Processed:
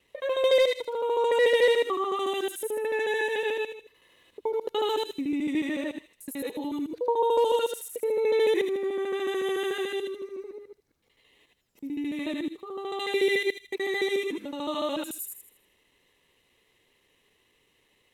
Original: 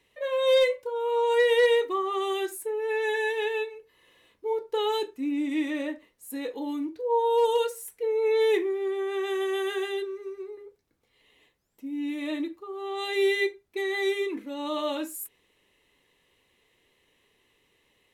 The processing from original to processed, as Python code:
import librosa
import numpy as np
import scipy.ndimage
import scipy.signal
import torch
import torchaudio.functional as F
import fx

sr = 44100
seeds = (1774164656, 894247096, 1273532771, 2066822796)

y = fx.local_reverse(x, sr, ms=73.0)
y = fx.echo_wet_highpass(y, sr, ms=80, feedback_pct=39, hz=3500.0, wet_db=-3.5)